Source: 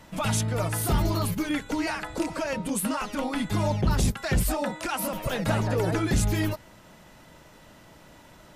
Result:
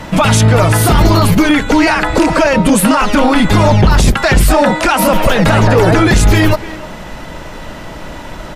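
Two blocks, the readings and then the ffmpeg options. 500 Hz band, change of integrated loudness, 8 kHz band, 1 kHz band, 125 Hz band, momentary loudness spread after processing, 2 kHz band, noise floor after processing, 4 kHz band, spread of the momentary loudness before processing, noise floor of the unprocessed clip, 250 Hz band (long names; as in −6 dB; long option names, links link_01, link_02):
+18.0 dB, +17.0 dB, +13.5 dB, +19.0 dB, +16.0 dB, 20 LU, +19.0 dB, −28 dBFS, +17.0 dB, 5 LU, −52 dBFS, +17.0 dB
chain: -filter_complex "[0:a]lowpass=frequency=3800:poles=1,asubboost=boost=2.5:cutoff=57,acrossover=split=930[link_01][link_02];[link_01]asoftclip=type=tanh:threshold=-25dB[link_03];[link_03][link_02]amix=inputs=2:normalize=0,asplit=2[link_04][link_05];[link_05]adelay=300,highpass=300,lowpass=3400,asoftclip=type=hard:threshold=-29dB,volume=-17dB[link_06];[link_04][link_06]amix=inputs=2:normalize=0,alimiter=level_in=24.5dB:limit=-1dB:release=50:level=0:latency=1,volume=-1dB"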